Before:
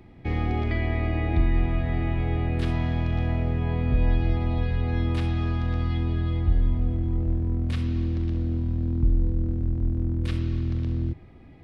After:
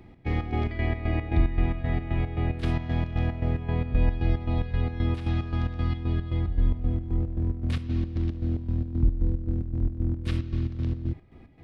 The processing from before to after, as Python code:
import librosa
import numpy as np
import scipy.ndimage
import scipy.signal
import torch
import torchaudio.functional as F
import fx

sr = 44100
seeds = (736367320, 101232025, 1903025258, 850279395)

y = fx.chopper(x, sr, hz=3.8, depth_pct=65, duty_pct=55)